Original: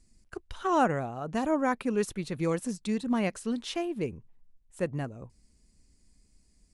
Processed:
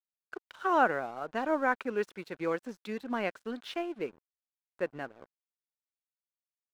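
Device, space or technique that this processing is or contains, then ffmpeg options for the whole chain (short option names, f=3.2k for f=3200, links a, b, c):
pocket radio on a weak battery: -af "highpass=360,lowpass=3.4k,aeval=exprs='sgn(val(0))*max(abs(val(0))-0.00211,0)':c=same,equalizer=f=1.5k:t=o:w=0.25:g=6.5"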